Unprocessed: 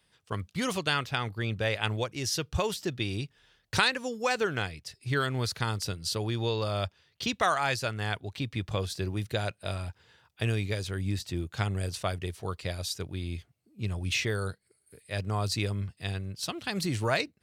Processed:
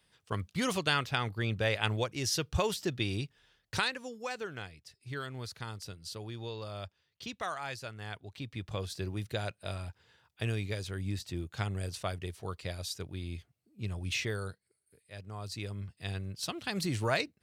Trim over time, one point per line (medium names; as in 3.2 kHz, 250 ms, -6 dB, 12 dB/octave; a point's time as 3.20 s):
3.13 s -1 dB
4.40 s -11 dB
7.98 s -11 dB
8.98 s -4.5 dB
14.30 s -4.5 dB
15.22 s -14 dB
16.22 s -2.5 dB